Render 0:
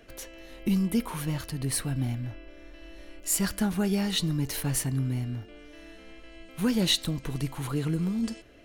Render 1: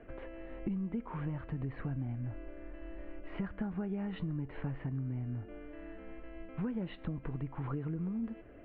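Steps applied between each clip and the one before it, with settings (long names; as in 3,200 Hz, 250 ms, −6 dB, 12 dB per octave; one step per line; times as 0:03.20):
Bessel low-pass filter 1,400 Hz, order 8
downward compressor 6 to 1, threshold −36 dBFS, peak gain reduction 13.5 dB
level +1.5 dB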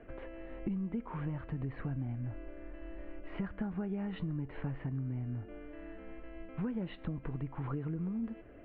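no processing that can be heard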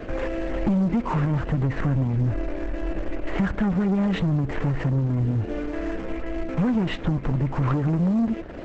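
leveller curve on the samples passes 3
level +8.5 dB
Opus 10 kbit/s 48,000 Hz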